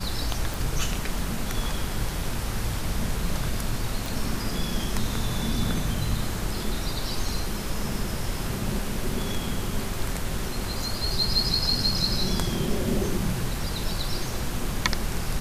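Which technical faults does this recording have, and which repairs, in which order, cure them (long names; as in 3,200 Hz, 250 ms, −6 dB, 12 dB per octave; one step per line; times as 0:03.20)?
0:00.54: click
0:04.06: click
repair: click removal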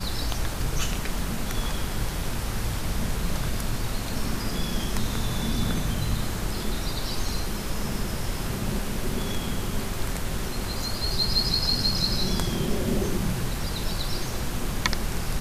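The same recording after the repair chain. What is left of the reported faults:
none of them is left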